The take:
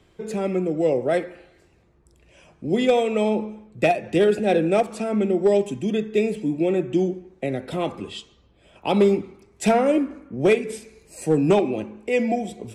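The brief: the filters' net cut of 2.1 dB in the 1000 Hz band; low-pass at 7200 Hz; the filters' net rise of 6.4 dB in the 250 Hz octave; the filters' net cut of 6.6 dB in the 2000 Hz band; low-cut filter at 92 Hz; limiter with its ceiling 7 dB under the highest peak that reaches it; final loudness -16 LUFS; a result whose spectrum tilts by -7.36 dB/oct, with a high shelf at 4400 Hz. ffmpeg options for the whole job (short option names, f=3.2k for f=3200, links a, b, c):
-af "highpass=92,lowpass=7.2k,equalizer=f=250:t=o:g=9,equalizer=f=1k:t=o:g=-3.5,equalizer=f=2k:t=o:g=-6.5,highshelf=f=4.4k:g=-5,volume=5dB,alimiter=limit=-6.5dB:level=0:latency=1"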